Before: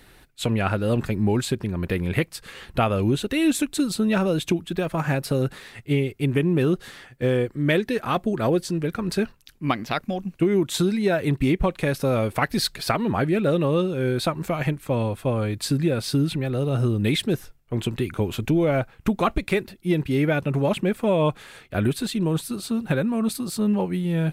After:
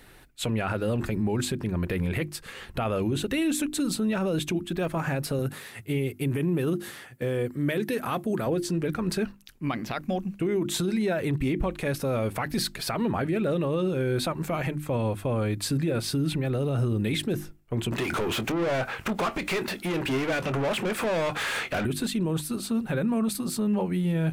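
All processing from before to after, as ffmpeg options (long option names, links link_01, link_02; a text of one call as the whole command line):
ffmpeg -i in.wav -filter_complex "[0:a]asettb=1/sr,asplit=3[link_01][link_02][link_03];[link_01]atrim=end=5.394[link_04];[link_02]atrim=start=5.39:end=8.46,asetpts=PTS-STARTPTS,afade=type=in:duration=0.004:curve=qsin,afade=type=out:start_time=3.066:duration=0.004:curve=qsin,highpass=frequency=75:width=0.5412,highpass=frequency=75:width=1.3066,equalizer=frequency=12000:width_type=o:width=0.81:gain=10[link_05];[link_03]atrim=start=8.456[link_06];[link_04][link_05]acrossfade=duration=0.004:curve1=hsin:curve2=qsin[link_07];[link_07][link_06]acrossfade=duration=0.004:curve1=qsin:curve2=hsin,asettb=1/sr,asplit=3[link_08][link_09][link_10];[link_08]atrim=end=17.924[link_11];[link_09]atrim=start=17.92:end=21.85,asetpts=PTS-STARTPTS,afade=type=in:duration=0.004:curve=qsin,afade=type=out:start_time=3.926:duration=0.004:curve=qsin,acompressor=threshold=-32dB:ratio=4:attack=3.2:release=140:knee=1:detection=peak,asplit=2[link_12][link_13];[link_13]highpass=frequency=720:poles=1,volume=30dB,asoftclip=type=tanh:threshold=-19.5dB[link_14];[link_12][link_14]amix=inputs=2:normalize=0,lowpass=frequency=4300:poles=1,volume=-6dB,asplit=2[link_15][link_16];[link_16]adelay=23,volume=-13.5dB[link_17];[link_15][link_17]amix=inputs=2:normalize=0,atrim=end_sample=173313[link_18];[link_10]atrim=start=21.846[link_19];[link_11][link_18]acrossfade=duration=0.004:curve1=hsin:curve2=qsin[link_20];[link_20][link_19]acrossfade=duration=0.004:curve1=qsin:curve2=hsin,equalizer=frequency=4100:width=1.5:gain=-2.5,bandreject=frequency=50:width_type=h:width=6,bandreject=frequency=100:width_type=h:width=6,bandreject=frequency=150:width_type=h:width=6,bandreject=frequency=200:width_type=h:width=6,bandreject=frequency=250:width_type=h:width=6,bandreject=frequency=300:width_type=h:width=6,bandreject=frequency=350:width_type=h:width=6,alimiter=limit=-19dB:level=0:latency=1:release=24" out.wav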